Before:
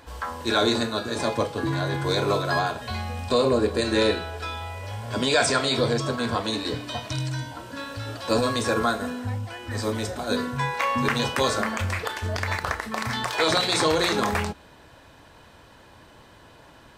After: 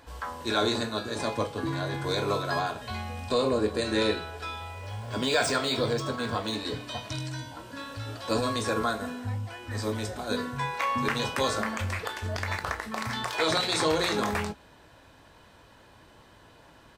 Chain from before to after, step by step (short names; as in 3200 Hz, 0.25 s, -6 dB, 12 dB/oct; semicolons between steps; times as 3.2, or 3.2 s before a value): 4.71–6.56 median filter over 3 samples; doubler 19 ms -11 dB; gain -4.5 dB